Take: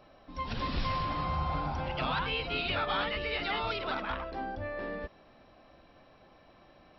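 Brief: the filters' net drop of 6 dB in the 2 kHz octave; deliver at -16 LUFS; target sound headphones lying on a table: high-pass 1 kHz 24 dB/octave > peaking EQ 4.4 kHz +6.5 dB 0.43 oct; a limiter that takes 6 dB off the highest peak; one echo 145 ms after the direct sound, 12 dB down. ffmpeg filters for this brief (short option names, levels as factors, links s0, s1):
-af "equalizer=f=2000:t=o:g=-8.5,alimiter=level_in=1.5:limit=0.0631:level=0:latency=1,volume=0.668,highpass=f=1000:w=0.5412,highpass=f=1000:w=1.3066,equalizer=f=4400:t=o:w=0.43:g=6.5,aecho=1:1:145:0.251,volume=15.8"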